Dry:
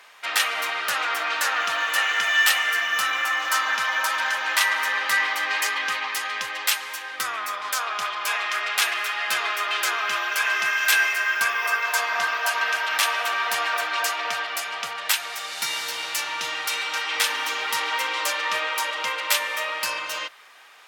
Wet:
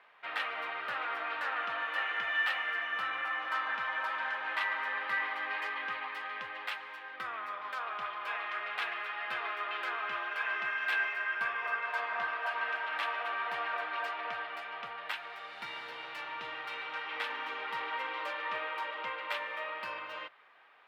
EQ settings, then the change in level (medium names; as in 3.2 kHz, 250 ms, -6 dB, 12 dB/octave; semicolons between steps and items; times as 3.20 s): distance through air 470 m; -7.0 dB